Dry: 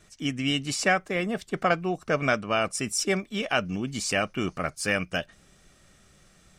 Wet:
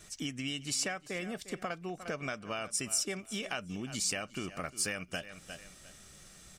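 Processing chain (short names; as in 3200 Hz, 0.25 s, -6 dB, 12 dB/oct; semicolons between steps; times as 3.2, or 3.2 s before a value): on a send: feedback echo 0.353 s, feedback 22%, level -19 dB; on the sum: compressor 6:1, threshold -36 dBFS, peak gain reduction 17 dB; high shelf 3900 Hz +9.5 dB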